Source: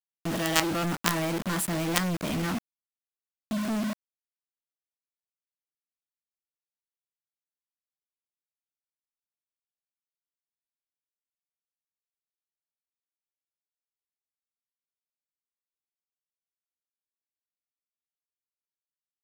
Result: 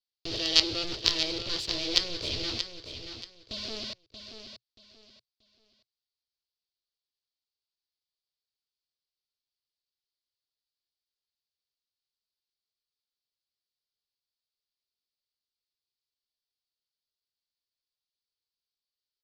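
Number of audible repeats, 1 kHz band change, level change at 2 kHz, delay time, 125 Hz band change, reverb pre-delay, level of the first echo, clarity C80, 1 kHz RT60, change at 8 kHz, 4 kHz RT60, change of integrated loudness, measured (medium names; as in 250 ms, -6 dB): 3, -12.5 dB, -5.0 dB, 631 ms, -12.5 dB, no reverb, -9.0 dB, no reverb, no reverb, -5.0 dB, no reverb, +0.5 dB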